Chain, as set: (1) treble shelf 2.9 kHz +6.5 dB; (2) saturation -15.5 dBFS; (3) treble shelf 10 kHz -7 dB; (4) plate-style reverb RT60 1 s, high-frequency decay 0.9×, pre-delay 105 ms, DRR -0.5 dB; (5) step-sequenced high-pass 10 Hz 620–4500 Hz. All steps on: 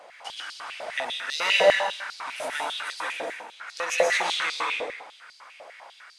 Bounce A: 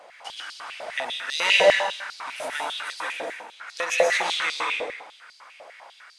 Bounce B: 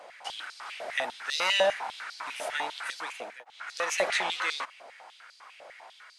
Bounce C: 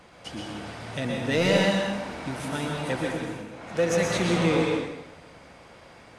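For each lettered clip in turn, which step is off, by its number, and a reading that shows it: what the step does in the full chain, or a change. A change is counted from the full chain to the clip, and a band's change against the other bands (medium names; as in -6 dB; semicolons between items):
2, momentary loudness spread change -1 LU; 4, momentary loudness spread change +4 LU; 5, 250 Hz band +25.0 dB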